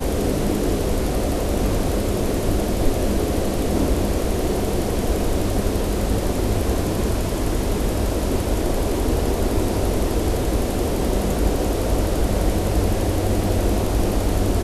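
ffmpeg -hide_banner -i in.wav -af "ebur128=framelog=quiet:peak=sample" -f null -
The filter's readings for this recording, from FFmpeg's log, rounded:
Integrated loudness:
  I:         -22.2 LUFS
  Threshold: -32.2 LUFS
Loudness range:
  LRA:         1.0 LU
  Threshold: -42.3 LUFS
  LRA low:   -22.7 LUFS
  LRA high:  -21.7 LUFS
Sample peak:
  Peak:       -5.5 dBFS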